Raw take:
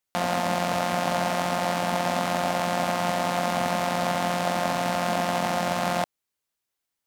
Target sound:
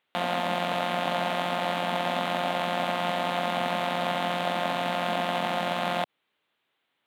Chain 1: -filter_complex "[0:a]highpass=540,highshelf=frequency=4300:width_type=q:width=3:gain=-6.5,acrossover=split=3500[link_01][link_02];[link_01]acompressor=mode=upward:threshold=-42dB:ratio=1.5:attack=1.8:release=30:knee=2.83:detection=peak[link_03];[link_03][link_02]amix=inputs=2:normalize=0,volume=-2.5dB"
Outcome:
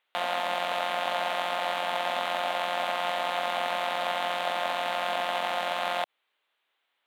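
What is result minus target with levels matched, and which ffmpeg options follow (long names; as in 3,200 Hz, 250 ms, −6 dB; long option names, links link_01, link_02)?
125 Hz band −15.5 dB
-filter_complex "[0:a]highpass=170,highshelf=frequency=4300:width_type=q:width=3:gain=-6.5,acrossover=split=3500[link_01][link_02];[link_01]acompressor=mode=upward:threshold=-42dB:ratio=1.5:attack=1.8:release=30:knee=2.83:detection=peak[link_03];[link_03][link_02]amix=inputs=2:normalize=0,volume=-2.5dB"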